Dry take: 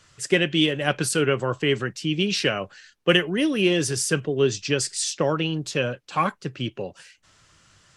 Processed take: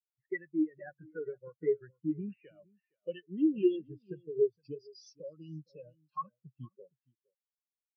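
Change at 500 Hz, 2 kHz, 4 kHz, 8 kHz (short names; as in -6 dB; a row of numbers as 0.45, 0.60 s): -10.5 dB, under -20 dB, under -30 dB, under -35 dB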